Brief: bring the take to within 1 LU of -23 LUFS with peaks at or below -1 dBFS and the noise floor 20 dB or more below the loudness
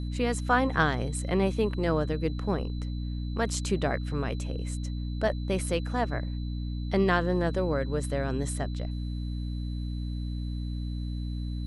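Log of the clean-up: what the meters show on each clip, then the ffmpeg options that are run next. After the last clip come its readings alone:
hum 60 Hz; harmonics up to 300 Hz; hum level -30 dBFS; steady tone 4000 Hz; tone level -52 dBFS; loudness -30.0 LUFS; peak -10.0 dBFS; loudness target -23.0 LUFS
-> -af "bandreject=f=60:t=h:w=6,bandreject=f=120:t=h:w=6,bandreject=f=180:t=h:w=6,bandreject=f=240:t=h:w=6,bandreject=f=300:t=h:w=6"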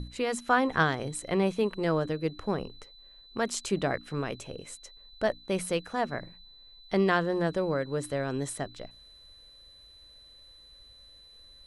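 hum none; steady tone 4000 Hz; tone level -52 dBFS
-> -af "bandreject=f=4k:w=30"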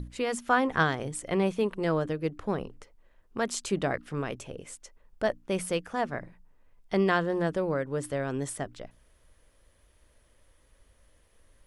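steady tone none; loudness -30.0 LUFS; peak -10.5 dBFS; loudness target -23.0 LUFS
-> -af "volume=7dB"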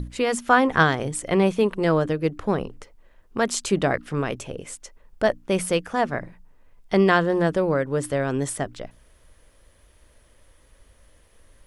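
loudness -23.0 LUFS; peak -3.5 dBFS; noise floor -57 dBFS

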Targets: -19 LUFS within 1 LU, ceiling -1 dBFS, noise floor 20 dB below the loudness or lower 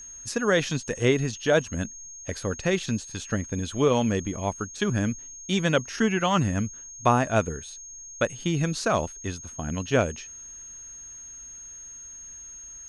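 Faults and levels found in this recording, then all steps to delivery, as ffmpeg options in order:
steady tone 6500 Hz; tone level -40 dBFS; loudness -26.5 LUFS; peak -7.0 dBFS; loudness target -19.0 LUFS
-> -af "bandreject=f=6.5k:w=30"
-af "volume=7.5dB,alimiter=limit=-1dB:level=0:latency=1"

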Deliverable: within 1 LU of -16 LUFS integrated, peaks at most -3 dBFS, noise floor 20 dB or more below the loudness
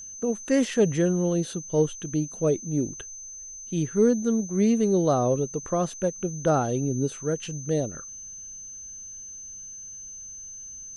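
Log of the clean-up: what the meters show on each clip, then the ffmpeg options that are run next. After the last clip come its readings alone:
steady tone 6200 Hz; tone level -38 dBFS; loudness -25.5 LUFS; peak -10.0 dBFS; loudness target -16.0 LUFS
-> -af "bandreject=f=6.2k:w=30"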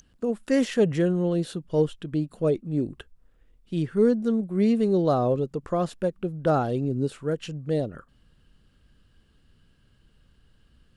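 steady tone none; loudness -25.5 LUFS; peak -10.5 dBFS; loudness target -16.0 LUFS
-> -af "volume=9.5dB,alimiter=limit=-3dB:level=0:latency=1"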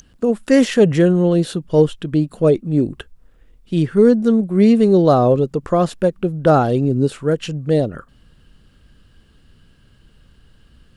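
loudness -16.5 LUFS; peak -3.0 dBFS; noise floor -53 dBFS

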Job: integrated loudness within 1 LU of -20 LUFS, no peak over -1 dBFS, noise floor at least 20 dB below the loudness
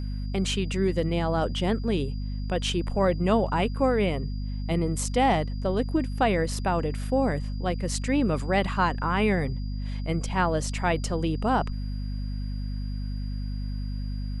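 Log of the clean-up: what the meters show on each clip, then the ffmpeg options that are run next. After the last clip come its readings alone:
hum 50 Hz; harmonics up to 250 Hz; hum level -28 dBFS; steady tone 4800 Hz; tone level -51 dBFS; loudness -27.0 LUFS; peak -10.0 dBFS; loudness target -20.0 LUFS
-> -af "bandreject=f=50:t=h:w=6,bandreject=f=100:t=h:w=6,bandreject=f=150:t=h:w=6,bandreject=f=200:t=h:w=6,bandreject=f=250:t=h:w=6"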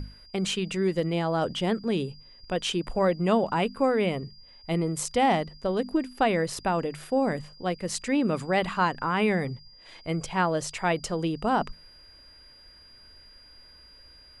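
hum none; steady tone 4800 Hz; tone level -51 dBFS
-> -af "bandreject=f=4.8k:w=30"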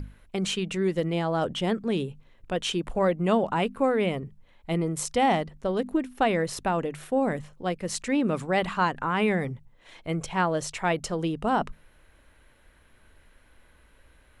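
steady tone none; loudness -27.5 LUFS; peak -10.5 dBFS; loudness target -20.0 LUFS
-> -af "volume=7.5dB"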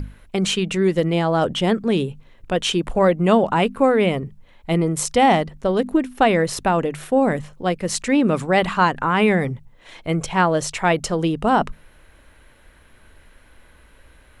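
loudness -20.0 LUFS; peak -3.0 dBFS; noise floor -51 dBFS

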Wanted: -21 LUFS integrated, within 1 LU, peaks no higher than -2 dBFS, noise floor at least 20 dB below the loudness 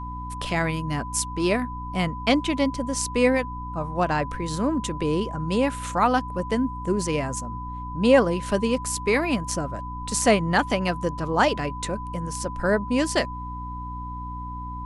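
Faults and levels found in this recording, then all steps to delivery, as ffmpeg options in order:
hum 60 Hz; harmonics up to 300 Hz; hum level -33 dBFS; steady tone 1000 Hz; tone level -34 dBFS; loudness -25.0 LUFS; peak -5.0 dBFS; loudness target -21.0 LUFS
-> -af "bandreject=f=60:t=h:w=4,bandreject=f=120:t=h:w=4,bandreject=f=180:t=h:w=4,bandreject=f=240:t=h:w=4,bandreject=f=300:t=h:w=4"
-af "bandreject=f=1k:w=30"
-af "volume=4dB,alimiter=limit=-2dB:level=0:latency=1"

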